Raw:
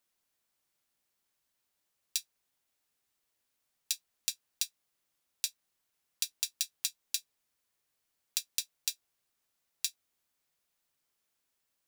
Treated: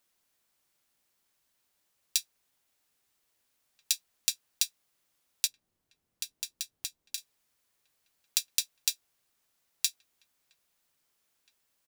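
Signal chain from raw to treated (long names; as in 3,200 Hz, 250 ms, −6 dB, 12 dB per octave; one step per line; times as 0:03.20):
0:05.47–0:07.18: tilt shelving filter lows +9 dB, about 630 Hz
slap from a distant wall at 280 metres, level −20 dB
level +5 dB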